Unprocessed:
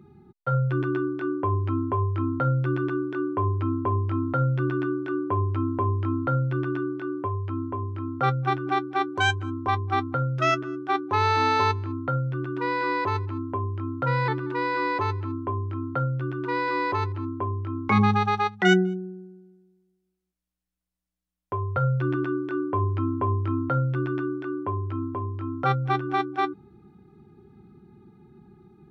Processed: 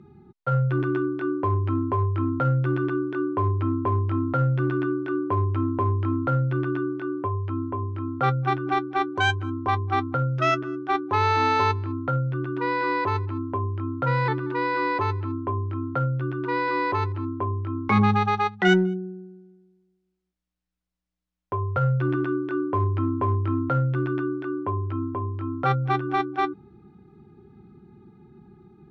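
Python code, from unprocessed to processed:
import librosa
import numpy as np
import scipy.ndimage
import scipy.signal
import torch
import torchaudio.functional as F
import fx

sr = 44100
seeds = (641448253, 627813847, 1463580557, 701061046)

p1 = np.clip(x, -10.0 ** (-20.0 / 20.0), 10.0 ** (-20.0 / 20.0))
p2 = x + (p1 * 10.0 ** (-9.0 / 20.0))
p3 = fx.air_absorb(p2, sr, metres=74.0)
y = p3 * 10.0 ** (-1.0 / 20.0)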